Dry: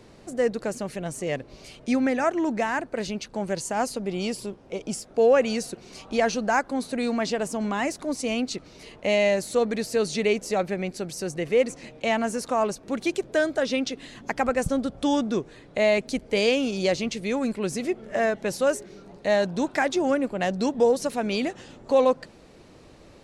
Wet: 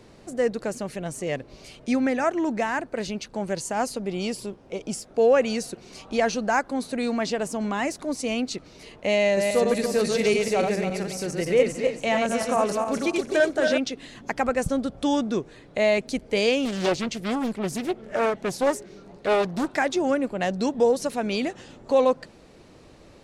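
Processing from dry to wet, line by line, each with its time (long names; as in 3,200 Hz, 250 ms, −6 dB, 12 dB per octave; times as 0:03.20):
0:09.23–0:13.78: feedback delay that plays each chunk backwards 139 ms, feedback 54%, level −3 dB
0:16.65–0:19.70: highs frequency-modulated by the lows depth 0.61 ms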